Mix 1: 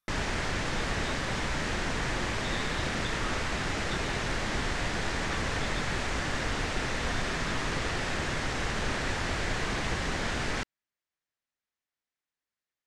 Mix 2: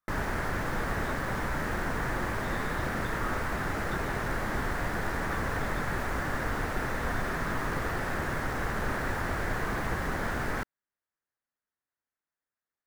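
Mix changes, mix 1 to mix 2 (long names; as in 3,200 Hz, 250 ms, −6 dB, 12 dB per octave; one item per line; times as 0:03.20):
background: remove low-pass filter 7,900 Hz 24 dB per octave
master: add high shelf with overshoot 2,100 Hz −8.5 dB, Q 1.5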